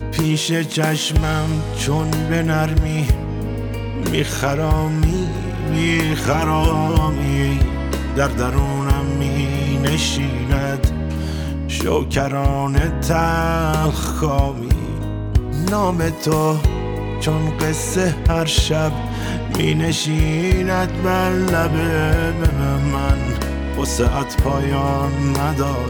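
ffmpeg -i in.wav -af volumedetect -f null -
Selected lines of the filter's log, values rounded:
mean_volume: -18.1 dB
max_volume: -5.2 dB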